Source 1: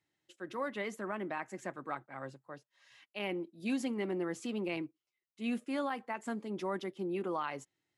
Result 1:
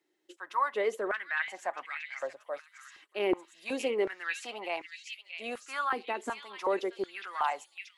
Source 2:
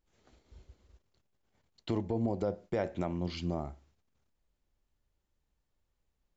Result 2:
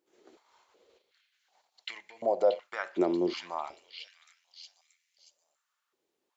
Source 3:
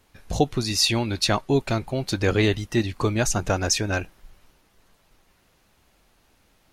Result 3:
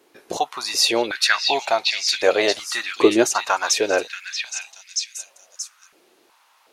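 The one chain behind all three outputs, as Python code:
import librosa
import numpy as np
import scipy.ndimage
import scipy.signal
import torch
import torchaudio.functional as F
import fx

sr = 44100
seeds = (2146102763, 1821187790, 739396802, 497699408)

y = fx.echo_stepped(x, sr, ms=631, hz=3200.0, octaves=0.7, feedback_pct=70, wet_db=-1.5)
y = fx.filter_held_highpass(y, sr, hz=2.7, low_hz=360.0, high_hz=2100.0)
y = F.gain(torch.from_numpy(y), 2.5).numpy()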